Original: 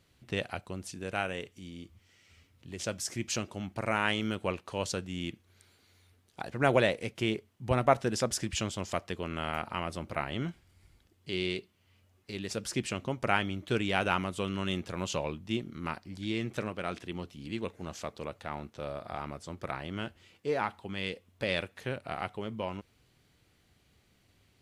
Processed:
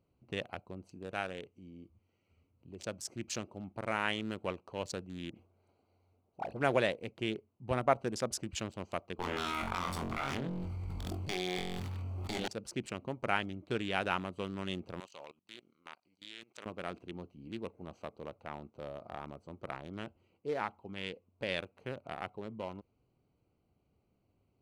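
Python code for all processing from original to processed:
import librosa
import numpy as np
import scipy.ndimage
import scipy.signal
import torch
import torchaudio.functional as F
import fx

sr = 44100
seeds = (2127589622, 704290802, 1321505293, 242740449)

y = fx.chain(x, sr, fx.peak_eq(hz=700.0, db=7.5, octaves=0.91),
    fx.dispersion(late='highs', ms=69.0, hz=2200.0),
    fx.sustainer(db_per_s=120.0), at=(5.3, 6.6))
y = fx.chain(y, sr, fx.lower_of_two(delay_ms=0.88),
    fx.room_flutter(wall_m=3.8, rt60_s=0.32),
    fx.env_flatten(amount_pct=100), at=(9.19, 12.48))
y = fx.chain(y, sr, fx.halfwave_gain(db=-3.0),
    fx.weighting(curve='ITU-R 468'),
    fx.level_steps(step_db=21), at=(15.0, 16.66))
y = fx.wiener(y, sr, points=25)
y = fx.low_shelf(y, sr, hz=160.0, db=-6.0)
y = F.gain(torch.from_numpy(y), -3.5).numpy()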